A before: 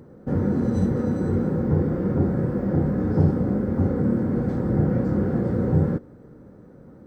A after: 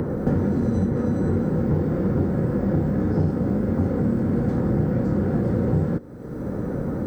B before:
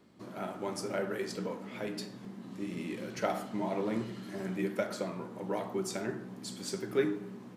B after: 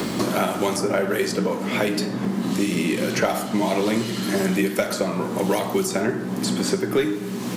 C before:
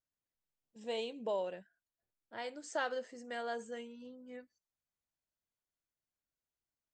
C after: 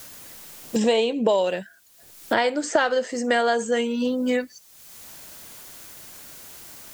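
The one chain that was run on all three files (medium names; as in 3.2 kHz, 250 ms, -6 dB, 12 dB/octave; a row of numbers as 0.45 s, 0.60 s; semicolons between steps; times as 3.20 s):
treble shelf 5.3 kHz +6.5 dB; in parallel at -6 dB: one-sided clip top -28.5 dBFS; on the sum: three bands compressed up and down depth 100%; normalise loudness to -23 LUFS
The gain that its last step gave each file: -2.5 dB, +9.0 dB, +15.0 dB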